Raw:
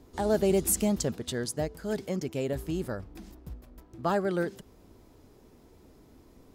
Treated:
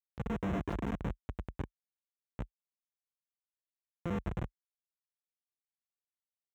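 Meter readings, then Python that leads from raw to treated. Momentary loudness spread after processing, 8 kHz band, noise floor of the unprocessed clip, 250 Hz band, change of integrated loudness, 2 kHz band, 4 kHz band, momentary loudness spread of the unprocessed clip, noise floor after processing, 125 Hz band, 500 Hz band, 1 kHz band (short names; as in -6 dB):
12 LU, under -30 dB, -57 dBFS, -9.0 dB, -9.5 dB, -9.0 dB, -17.0 dB, 22 LU, under -85 dBFS, -4.5 dB, -16.0 dB, -10.0 dB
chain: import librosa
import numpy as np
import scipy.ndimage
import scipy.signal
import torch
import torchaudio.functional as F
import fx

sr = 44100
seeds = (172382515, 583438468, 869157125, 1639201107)

p1 = np.r_[np.sort(x[:len(x) // 64 * 64].reshape(-1, 64), axis=1).ravel(), x[len(x) // 64 * 64:]]
p2 = p1 + fx.echo_split(p1, sr, split_hz=1700.0, low_ms=252, high_ms=95, feedback_pct=52, wet_db=-6.0, dry=0)
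p3 = fx.dynamic_eq(p2, sr, hz=4400.0, q=0.76, threshold_db=-45.0, ratio=4.0, max_db=-7)
p4 = fx.level_steps(p3, sr, step_db=22)
p5 = p3 + F.gain(torch.from_numpy(p4), 1.0).numpy()
p6 = fx.schmitt(p5, sr, flips_db=-20.5)
p7 = scipy.signal.sosfilt(scipy.signal.butter(4, 43.0, 'highpass', fs=sr, output='sos'), p6)
p8 = fx.slew_limit(p7, sr, full_power_hz=44.0)
y = F.gain(torch.from_numpy(p8), -2.0).numpy()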